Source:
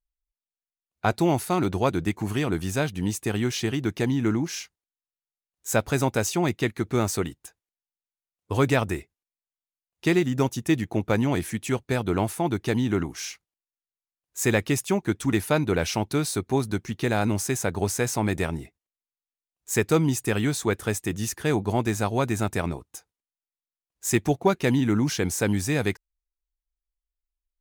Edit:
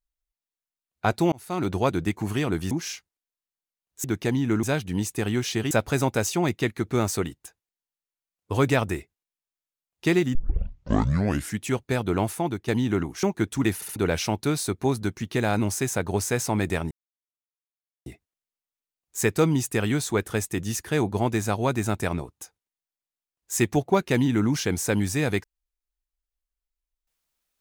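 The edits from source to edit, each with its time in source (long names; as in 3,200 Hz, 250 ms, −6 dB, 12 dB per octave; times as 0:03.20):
0:01.32–0:01.72: fade in
0:02.71–0:03.79: swap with 0:04.38–0:05.71
0:10.35: tape start 1.25 s
0:12.37–0:12.68: fade out, to −8.5 dB
0:13.23–0:14.91: remove
0:15.43: stutter in place 0.07 s, 3 plays
0:18.59: splice in silence 1.15 s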